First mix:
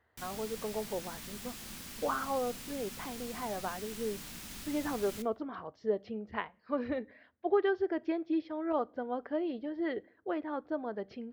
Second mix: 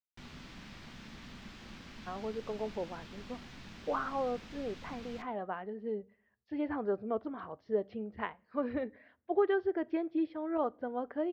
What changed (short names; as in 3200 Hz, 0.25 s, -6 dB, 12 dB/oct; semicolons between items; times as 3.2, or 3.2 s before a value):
speech: entry +1.85 s; master: add air absorption 200 m